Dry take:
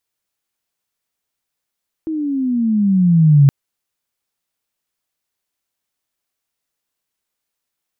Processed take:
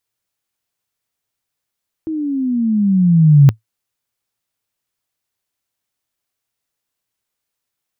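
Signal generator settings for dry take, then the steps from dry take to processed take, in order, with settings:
gliding synth tone sine, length 1.42 s, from 324 Hz, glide -15 st, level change +14 dB, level -5 dB
peaking EQ 110 Hz +8.5 dB 0.37 oct

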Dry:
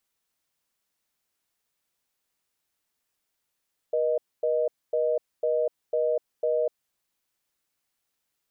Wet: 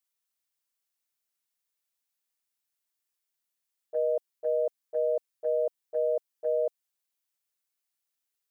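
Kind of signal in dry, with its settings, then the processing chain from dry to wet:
call progress tone reorder tone, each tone -24.5 dBFS 3.00 s
gate -26 dBFS, range -11 dB; tilt EQ +2 dB/octave

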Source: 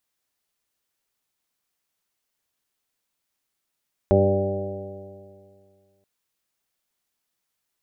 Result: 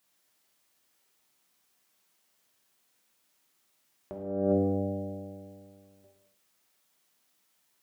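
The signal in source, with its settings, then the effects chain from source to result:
stretched partials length 1.93 s, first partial 96.7 Hz, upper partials -2.5/-8.5/1/-7/2/-15.5/-10.5 dB, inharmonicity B 0.001, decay 2.20 s, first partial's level -19 dB
high-pass 110 Hz 12 dB/octave; compressor with a negative ratio -27 dBFS, ratio -0.5; gated-style reverb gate 360 ms falling, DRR -0.5 dB

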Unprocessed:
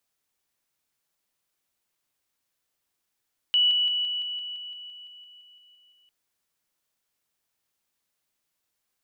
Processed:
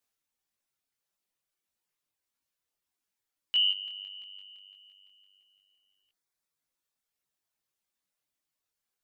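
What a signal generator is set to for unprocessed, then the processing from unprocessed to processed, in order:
level ladder 2.95 kHz -17.5 dBFS, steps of -3 dB, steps 15, 0.17 s 0.00 s
reverb removal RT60 1.8 s; detune thickener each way 57 cents

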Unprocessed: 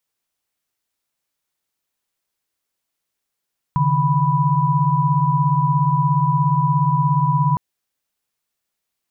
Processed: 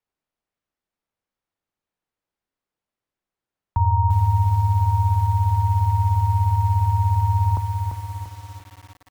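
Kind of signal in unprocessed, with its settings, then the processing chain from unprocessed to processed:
chord C#3/D#3/B5 sine, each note -18.5 dBFS 3.81 s
frequency shift -53 Hz; low-pass 1.1 kHz 6 dB/octave; bit-crushed delay 343 ms, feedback 55%, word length 7-bit, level -5 dB

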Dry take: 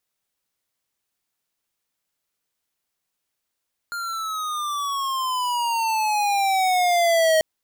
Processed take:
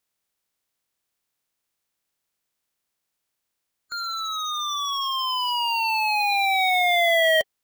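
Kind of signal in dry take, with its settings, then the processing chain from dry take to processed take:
gliding synth tone square, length 3.49 s, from 1.41 kHz, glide -14 st, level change +12 dB, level -17 dB
coarse spectral quantiser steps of 30 dB

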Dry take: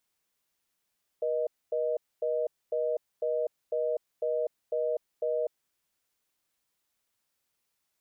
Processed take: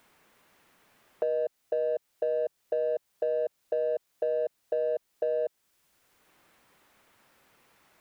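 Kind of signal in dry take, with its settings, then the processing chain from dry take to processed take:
call progress tone reorder tone, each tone -29 dBFS 4.28 s
in parallel at -7.5 dB: saturation -35 dBFS; on the sum: three bands compressed up and down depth 70%

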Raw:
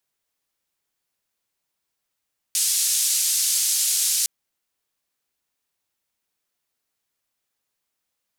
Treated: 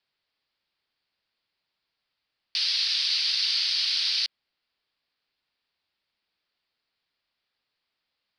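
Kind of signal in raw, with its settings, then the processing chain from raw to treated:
noise band 5.4–10 kHz, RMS -21.5 dBFS 1.71 s
elliptic low-pass 4.7 kHz, stop band 40 dB; treble shelf 2.6 kHz +8.5 dB

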